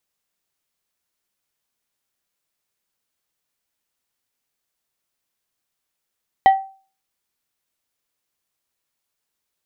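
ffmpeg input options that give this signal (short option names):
-f lavfi -i "aevalsrc='0.562*pow(10,-3*t/0.39)*sin(2*PI*774*t)+0.141*pow(10,-3*t/0.205)*sin(2*PI*1935*t)+0.0355*pow(10,-3*t/0.148)*sin(2*PI*3096*t)+0.00891*pow(10,-3*t/0.126)*sin(2*PI*3870*t)+0.00224*pow(10,-3*t/0.105)*sin(2*PI*5031*t)':d=0.89:s=44100"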